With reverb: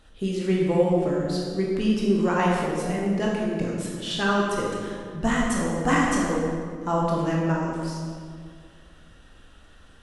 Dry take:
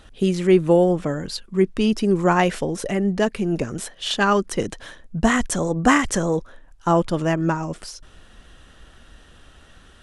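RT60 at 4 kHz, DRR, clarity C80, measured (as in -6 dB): 1.3 s, -3.5 dB, 1.5 dB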